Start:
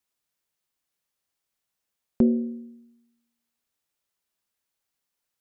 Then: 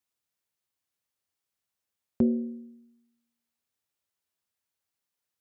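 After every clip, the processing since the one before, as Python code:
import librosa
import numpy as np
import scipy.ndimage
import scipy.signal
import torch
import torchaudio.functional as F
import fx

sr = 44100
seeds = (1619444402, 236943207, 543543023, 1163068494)

y = scipy.signal.sosfilt(scipy.signal.butter(2, 59.0, 'highpass', fs=sr, output='sos'), x)
y = fx.peak_eq(y, sr, hz=90.0, db=7.5, octaves=0.4)
y = y * librosa.db_to_amplitude(-4.0)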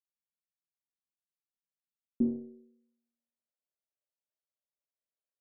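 y = fx.low_shelf(x, sr, hz=310.0, db=-10.0)
y = fx.cheby_harmonics(y, sr, harmonics=(6, 7), levels_db=(-18, -22), full_scale_db=-18.5)
y = fx.filter_sweep_lowpass(y, sr, from_hz=190.0, to_hz=590.0, start_s=1.77, end_s=3.08, q=4.7)
y = y * librosa.db_to_amplitude(-6.5)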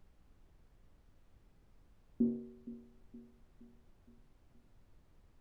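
y = fx.dmg_noise_colour(x, sr, seeds[0], colour='brown', level_db=-59.0)
y = fx.echo_feedback(y, sr, ms=468, feedback_pct=52, wet_db=-17.0)
y = y * librosa.db_to_amplitude(-3.5)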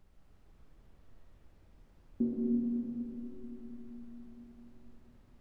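y = fx.rev_freeverb(x, sr, rt60_s=4.1, hf_ratio=0.55, predelay_ms=65, drr_db=-3.0)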